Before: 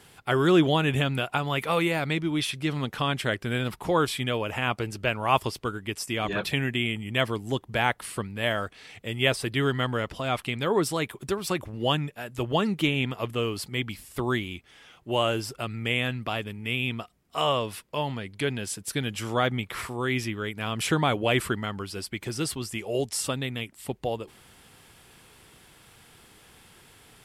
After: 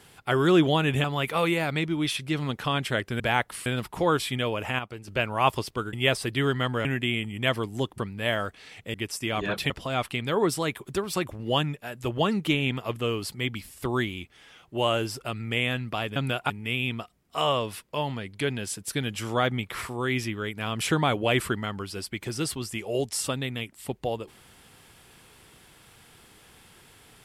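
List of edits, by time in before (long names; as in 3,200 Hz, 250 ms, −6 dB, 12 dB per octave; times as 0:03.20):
0:01.04–0:01.38: move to 0:16.50
0:04.67–0:04.96: clip gain −9 dB
0:05.81–0:06.57: swap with 0:09.12–0:10.04
0:07.70–0:08.16: move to 0:03.54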